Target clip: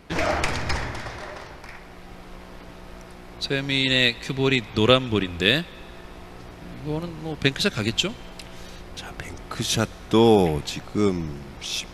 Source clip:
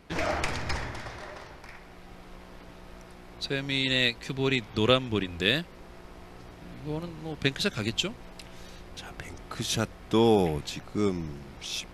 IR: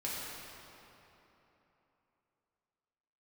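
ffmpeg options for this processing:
-filter_complex "[0:a]asplit=2[link_01][link_02];[link_02]highpass=950[link_03];[1:a]atrim=start_sample=2205,adelay=103[link_04];[link_03][link_04]afir=irnorm=-1:irlink=0,volume=-25dB[link_05];[link_01][link_05]amix=inputs=2:normalize=0,volume=5.5dB"

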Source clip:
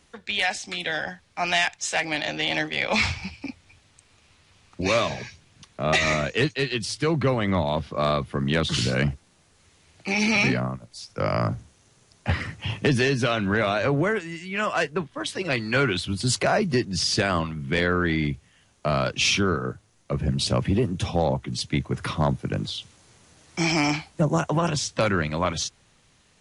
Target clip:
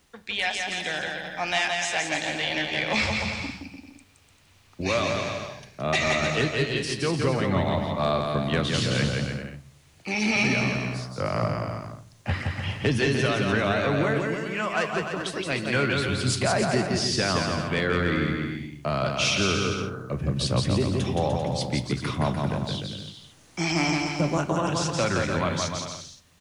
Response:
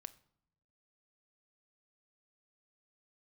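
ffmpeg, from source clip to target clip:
-filter_complex "[0:a]acrusher=bits=10:mix=0:aa=0.000001,aecho=1:1:170|297.5|393.1|464.8|518.6:0.631|0.398|0.251|0.158|0.1[link_01];[1:a]atrim=start_sample=2205[link_02];[link_01][link_02]afir=irnorm=-1:irlink=0,volume=2.5dB"

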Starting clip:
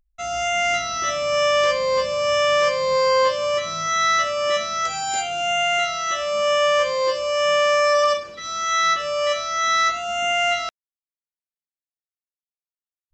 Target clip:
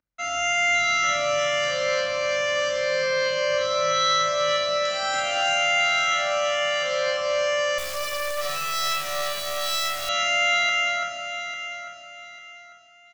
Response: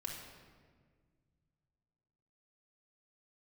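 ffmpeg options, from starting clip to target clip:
-filter_complex "[0:a]aeval=exprs='if(lt(val(0),0),0.708*val(0),val(0))':channel_layout=same,highpass=110,equalizer=frequency=260:width_type=q:width=4:gain=4,equalizer=frequency=510:width_type=q:width=4:gain=4,equalizer=frequency=1400:width_type=q:width=4:gain=7,equalizer=frequency=2000:width_type=q:width=4:gain=3,equalizer=frequency=3600:width_type=q:width=4:gain=-4,lowpass=frequency=6500:width=0.5412,lowpass=frequency=6500:width=1.3066,aecho=1:1:338:0.531,acrossover=split=170|3000[link_01][link_02][link_03];[link_02]acompressor=threshold=-24dB:ratio=10[link_04];[link_01][link_04][link_03]amix=inputs=3:normalize=0,aecho=1:1:847|1694|2541:0.316|0.0949|0.0285[link_05];[1:a]atrim=start_sample=2205[link_06];[link_05][link_06]afir=irnorm=-1:irlink=0,asettb=1/sr,asplit=3[link_07][link_08][link_09];[link_07]atrim=end=7.784[link_10];[link_08]atrim=start=7.78:end=10.09,asetpts=PTS-STARTPTS,afade=type=in:duration=0.004:curve=qsin,afade=type=out:start_time=2.306:duration=0.004:curve=qsin,acrusher=bits=3:dc=4:mix=0:aa=0.000001[link_11];[link_09]atrim=start=10.086[link_12];[link_10][link_11]acrossfade=duration=0.004:curve1=hsin:curve2=qsin[link_13];[link_13][link_12]acrossfade=duration=0.004:curve1=qsin:curve2=hsin,tiltshelf=frequency=670:gain=-3,volume=1.5dB"

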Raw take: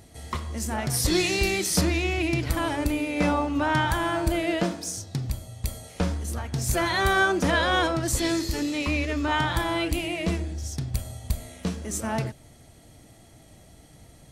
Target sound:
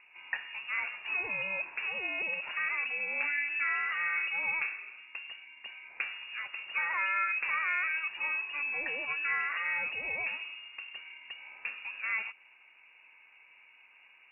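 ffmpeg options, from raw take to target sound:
ffmpeg -i in.wav -filter_complex "[0:a]acompressor=threshold=-25dB:ratio=6,acrossover=split=310 2000:gain=0.141 1 0.126[link_01][link_02][link_03];[link_01][link_02][link_03]amix=inputs=3:normalize=0,lowpass=frequency=2500:width_type=q:width=0.5098,lowpass=frequency=2500:width_type=q:width=0.6013,lowpass=frequency=2500:width_type=q:width=0.9,lowpass=frequency=2500:width_type=q:width=2.563,afreqshift=-2900" out.wav

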